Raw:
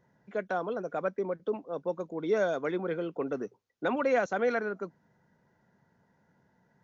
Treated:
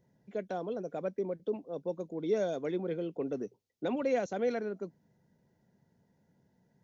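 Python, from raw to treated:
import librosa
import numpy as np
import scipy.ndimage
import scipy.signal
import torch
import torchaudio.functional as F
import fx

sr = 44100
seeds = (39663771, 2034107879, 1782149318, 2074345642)

y = fx.peak_eq(x, sr, hz=1300.0, db=-14.0, octaves=1.4)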